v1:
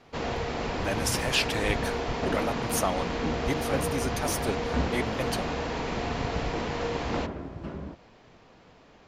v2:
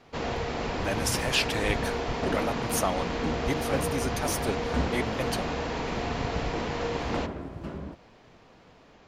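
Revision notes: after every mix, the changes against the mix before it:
second sound: remove high-frequency loss of the air 78 metres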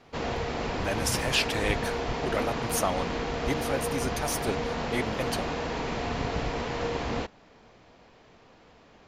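second sound: muted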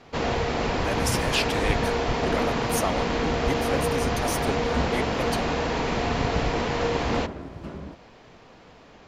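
first sound +5.5 dB
second sound: unmuted

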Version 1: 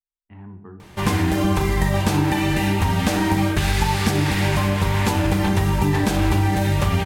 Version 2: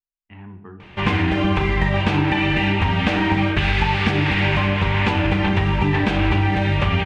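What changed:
speech: remove high-frequency loss of the air 310 metres
master: add low-pass with resonance 2,700 Hz, resonance Q 2.2

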